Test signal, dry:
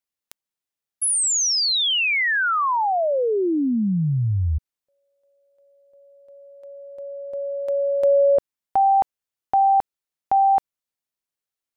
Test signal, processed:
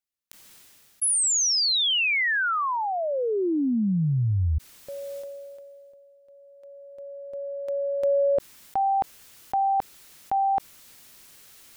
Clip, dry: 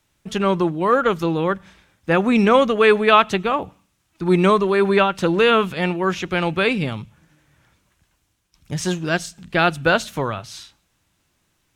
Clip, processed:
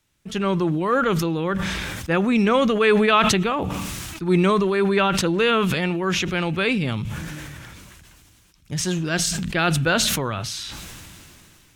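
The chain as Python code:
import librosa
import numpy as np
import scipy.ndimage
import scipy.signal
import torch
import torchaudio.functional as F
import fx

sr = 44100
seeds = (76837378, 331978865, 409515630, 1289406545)

y = fx.peak_eq(x, sr, hz=740.0, db=-4.5, octaves=1.6)
y = fx.sustainer(y, sr, db_per_s=21.0)
y = F.gain(torch.from_numpy(y), -2.0).numpy()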